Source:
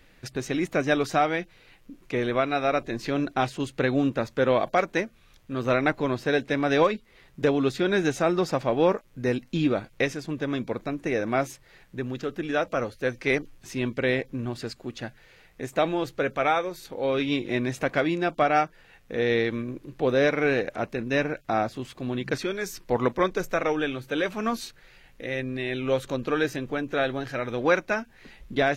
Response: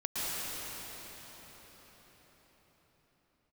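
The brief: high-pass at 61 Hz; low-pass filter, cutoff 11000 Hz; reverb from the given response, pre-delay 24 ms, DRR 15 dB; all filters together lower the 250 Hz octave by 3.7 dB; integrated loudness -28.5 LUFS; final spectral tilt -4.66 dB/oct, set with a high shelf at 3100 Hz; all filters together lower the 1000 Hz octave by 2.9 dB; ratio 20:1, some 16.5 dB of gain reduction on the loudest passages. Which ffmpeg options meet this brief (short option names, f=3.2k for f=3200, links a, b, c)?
-filter_complex "[0:a]highpass=61,lowpass=11k,equalizer=f=250:t=o:g=-4.5,equalizer=f=1k:t=o:g=-4.5,highshelf=f=3.1k:g=3.5,acompressor=threshold=-35dB:ratio=20,asplit=2[a][b];[1:a]atrim=start_sample=2205,adelay=24[c];[b][c]afir=irnorm=-1:irlink=0,volume=-23dB[d];[a][d]amix=inputs=2:normalize=0,volume=12dB"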